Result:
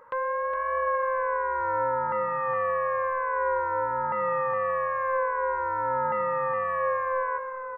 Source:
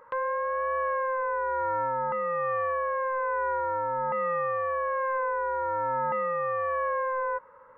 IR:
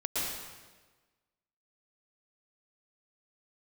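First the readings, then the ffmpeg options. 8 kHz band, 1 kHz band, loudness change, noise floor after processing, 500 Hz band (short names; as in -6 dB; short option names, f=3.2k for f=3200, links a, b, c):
n/a, +1.5 dB, +1.5 dB, -35 dBFS, +1.0 dB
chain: -filter_complex "[0:a]aecho=1:1:413:0.447,asplit=2[a][b];[1:a]atrim=start_sample=2205[c];[b][c]afir=irnorm=-1:irlink=0,volume=-21dB[d];[a][d]amix=inputs=2:normalize=0"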